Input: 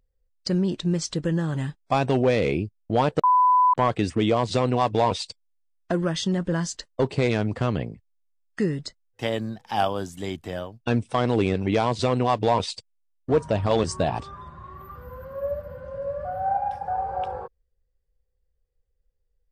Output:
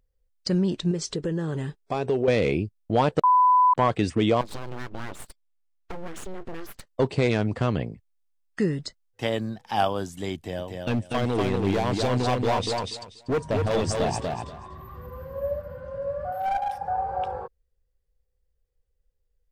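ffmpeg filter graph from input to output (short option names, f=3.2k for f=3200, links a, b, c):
-filter_complex "[0:a]asettb=1/sr,asplit=3[a][b][c];[a]atrim=end=0.914[d];[b]atrim=start=0.91:end=2.28,asetpts=PTS-STARTPTS,afade=t=in:d=0.004:c=qsin,afade=t=out:st=1.366:d=0.004:c=qsin,equalizer=f=420:t=o:w=0.39:g=13,acompressor=threshold=-28dB:ratio=2:attack=3.2:release=140:knee=1:detection=peak[e];[c]atrim=start=2.276[f];[d][e]acrossfade=d=0.004:c1=hsin:c2=qsin[g];[g][f]acrossfade=d=0.004:c1=qsin:c2=hsin,asettb=1/sr,asplit=3[h][i][j];[h]atrim=end=4.414[k];[i]atrim=start=4.41:end=6.87,asetpts=PTS-STARTPTS,afade=t=in:d=0.004:c=qsin,afade=t=out:st=2.456:d=0.004:c=qsin,lowpass=f=3k:p=1,aeval=exprs='abs(val(0))':c=same,acompressor=threshold=-32dB:ratio=3:attack=3.2:release=140:knee=1:detection=peak[l];[j]atrim=start=6.866[m];[k][l]acrossfade=d=0.004:c1=hsin:c2=qsin[n];[n][m]acrossfade=d=0.004:c1=qsin:c2=hsin,asettb=1/sr,asplit=3[o][p][q];[o]atrim=end=10.354[r];[p]atrim=start=10.35:end=15.58,asetpts=PTS-STARTPTS,afade=t=in:d=0.004:c=qsin,afade=t=out:st=5.226:d=0.004:c=qsin,equalizer=f=1.3k:w=3.1:g=-9,volume=20.5dB,asoftclip=hard,volume=-20.5dB,aecho=1:1:241|482|723:0.668|0.127|0.0241,atrim=end_sample=230643[s];[q]atrim=start=15.576[t];[r][s]acrossfade=d=0.004:c1=hsin:c2=qsin[u];[u][t]acrossfade=d=0.004:c1=qsin:c2=hsin,asettb=1/sr,asplit=3[v][w][x];[v]atrim=end=16.324[y];[w]atrim=start=16.32:end=16.78,asetpts=PTS-STARTPTS,afade=t=in:d=0.004:c=qsin,afade=t=out:st=0.456:d=0.004:c=qsin,aemphasis=mode=production:type=bsi,aeval=exprs='clip(val(0),-1,0.0631)':c=same[z];[x]atrim=start=16.776[aa];[y][z]acrossfade=d=0.004:c1=hsin:c2=qsin[ab];[ab][aa]acrossfade=d=0.004:c1=qsin:c2=hsin"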